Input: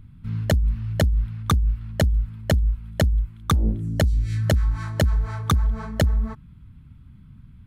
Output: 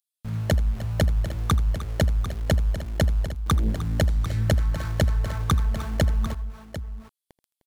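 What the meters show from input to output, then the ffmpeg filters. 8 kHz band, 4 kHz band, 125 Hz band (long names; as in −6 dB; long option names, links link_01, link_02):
−1.5 dB, −1.5 dB, −1.5 dB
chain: -filter_complex "[0:a]acrossover=split=5200[link_01][link_02];[link_01]aeval=exprs='val(0)*gte(abs(val(0)),0.0178)':channel_layout=same[link_03];[link_03][link_02]amix=inputs=2:normalize=0,aecho=1:1:81|305|747:0.141|0.178|0.251,volume=-2dB"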